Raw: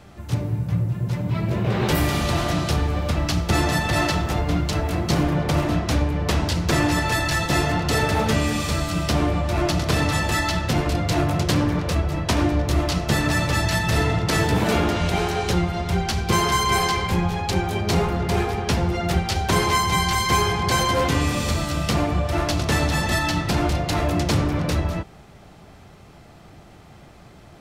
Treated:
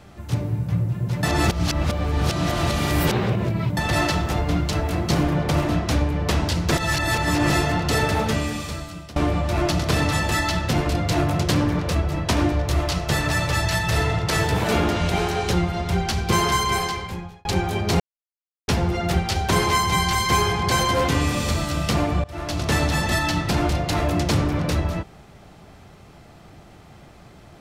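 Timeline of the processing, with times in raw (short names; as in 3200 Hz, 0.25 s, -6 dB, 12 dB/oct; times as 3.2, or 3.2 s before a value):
1.23–3.77 reverse
6.77–7.5 reverse
8.06–9.16 fade out, to -21.5 dB
12.52–14.7 bell 250 Hz -8 dB
16.52–17.45 fade out
18–18.68 mute
22.24–22.71 fade in, from -21.5 dB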